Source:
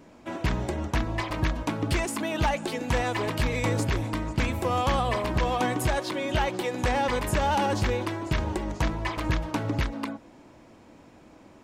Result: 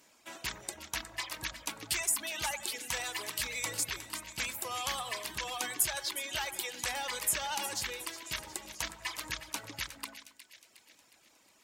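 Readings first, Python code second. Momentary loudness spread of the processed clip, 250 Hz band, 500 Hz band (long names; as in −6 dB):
10 LU, −22.0 dB, −17.0 dB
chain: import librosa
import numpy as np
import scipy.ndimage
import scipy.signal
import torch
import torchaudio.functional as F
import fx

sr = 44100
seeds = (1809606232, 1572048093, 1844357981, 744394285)

y = fx.dereverb_blind(x, sr, rt60_s=1.2)
y = librosa.effects.preemphasis(y, coef=0.97, zi=[0.0])
y = fx.cheby_harmonics(y, sr, harmonics=(4,), levels_db=(-35,), full_scale_db=-19.0)
y = fx.echo_split(y, sr, split_hz=1800.0, low_ms=91, high_ms=362, feedback_pct=52, wet_db=-12.0)
y = y * 10.0 ** (6.5 / 20.0)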